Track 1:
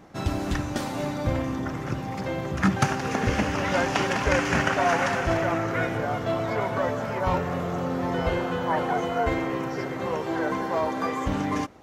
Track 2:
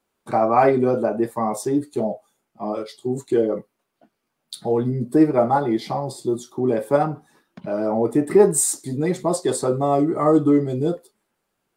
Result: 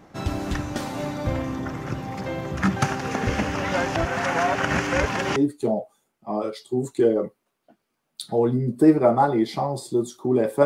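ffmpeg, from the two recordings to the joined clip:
ffmpeg -i cue0.wav -i cue1.wav -filter_complex "[0:a]apad=whole_dur=10.65,atrim=end=10.65,asplit=2[link_01][link_02];[link_01]atrim=end=3.962[link_03];[link_02]atrim=start=3.958:end=5.362,asetpts=PTS-STARTPTS,areverse[link_04];[1:a]atrim=start=1.688:end=6.98[link_05];[link_03][link_04]acrossfade=duration=0.004:curve1=hsin:curve2=hsin[link_06];[link_06][link_05]acrossfade=duration=0.004:curve1=hsin:curve2=hsin" out.wav

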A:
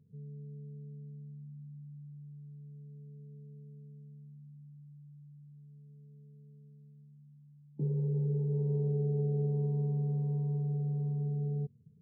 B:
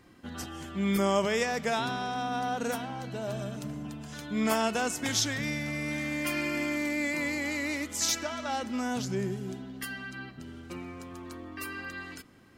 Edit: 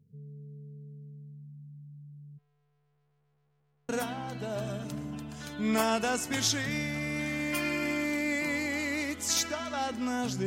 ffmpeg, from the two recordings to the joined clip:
ffmpeg -i cue0.wav -i cue1.wav -filter_complex "[0:a]asplit=3[link_01][link_02][link_03];[link_01]afade=type=out:start_time=2.37:duration=0.02[link_04];[link_02]aeval=exprs='(tanh(4470*val(0)+0.5)-tanh(0.5))/4470':channel_layout=same,afade=type=in:start_time=2.37:duration=0.02,afade=type=out:start_time=3.89:duration=0.02[link_05];[link_03]afade=type=in:start_time=3.89:duration=0.02[link_06];[link_04][link_05][link_06]amix=inputs=3:normalize=0,apad=whole_dur=10.46,atrim=end=10.46,atrim=end=3.892[link_07];[1:a]atrim=start=2.608:end=9.18[link_08];[link_07][link_08]acrossfade=duration=0.004:curve1=hsin:curve2=hsin" out.wav

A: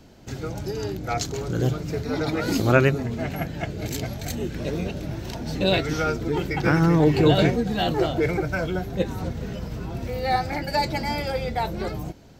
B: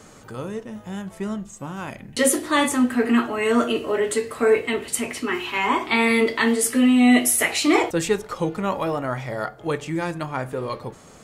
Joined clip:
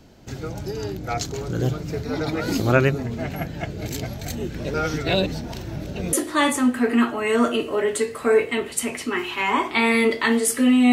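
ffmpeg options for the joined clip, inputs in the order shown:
ffmpeg -i cue0.wav -i cue1.wav -filter_complex "[0:a]apad=whole_dur=10.92,atrim=end=10.92,asplit=2[link_01][link_02];[link_01]atrim=end=4.742[link_03];[link_02]atrim=start=4.738:end=6.132,asetpts=PTS-STARTPTS,areverse[link_04];[1:a]atrim=start=2.288:end=7.08[link_05];[link_03][link_04]acrossfade=duration=0.004:curve1=hsin:curve2=hsin[link_06];[link_06][link_05]acrossfade=duration=0.004:curve1=hsin:curve2=hsin" out.wav

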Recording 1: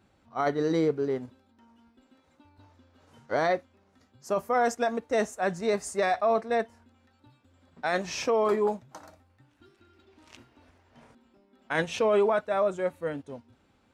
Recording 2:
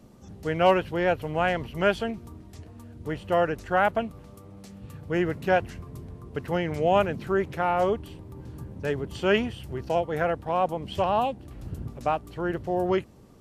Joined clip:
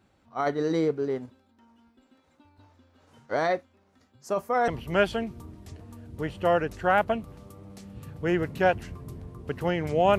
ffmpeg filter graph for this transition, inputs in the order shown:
ffmpeg -i cue0.wav -i cue1.wav -filter_complex "[0:a]apad=whole_dur=10.18,atrim=end=10.18,atrim=end=4.682[link_01];[1:a]atrim=start=1.548:end=7.05[link_02];[link_01][link_02]acrossfade=duration=0.004:curve1=hsin:curve2=hsin" out.wav

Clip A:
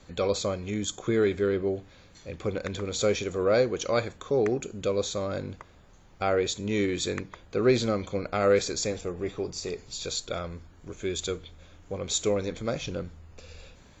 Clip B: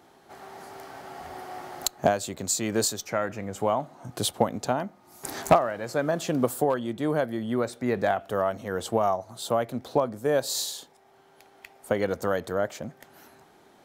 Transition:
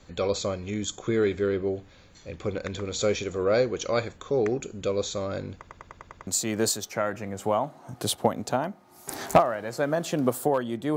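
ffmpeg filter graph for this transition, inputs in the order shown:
ffmpeg -i cue0.wav -i cue1.wav -filter_complex "[0:a]apad=whole_dur=10.96,atrim=end=10.96,asplit=7[link_01][link_02][link_03][link_04][link_05][link_06][link_07];[link_01]atrim=end=5.672[link_08];[link_02]atrim=start=5.568:end=5.672[link_09];[link_03]atrim=start=5.568:end=5.672[link_10];[link_04]atrim=start=5.568:end=5.672[link_11];[link_05]atrim=start=5.568:end=5.672[link_12];[link_06]atrim=start=5.568:end=5.672[link_13];[link_07]atrim=start=5.568:end=5.672[link_14];[1:a]atrim=start=2.428:end=7.12[link_15];[link_08][link_09]acrossfade=duration=0.004:curve1=hsin:curve2=hsin[link_16];[link_16][link_10]acrossfade=duration=0.004:curve1=hsin:curve2=hsin[link_17];[link_17][link_11]acrossfade=duration=0.004:curve1=hsin:curve2=hsin[link_18];[link_18][link_12]acrossfade=duration=0.004:curve1=hsin:curve2=hsin[link_19];[link_19][link_13]acrossfade=duration=0.004:curve1=hsin:curve2=hsin[link_20];[link_20][link_14]acrossfade=duration=0.004:curve1=hsin:curve2=hsin[link_21];[link_21][link_15]acrossfade=duration=0.004:curve1=hsin:curve2=hsin" out.wav

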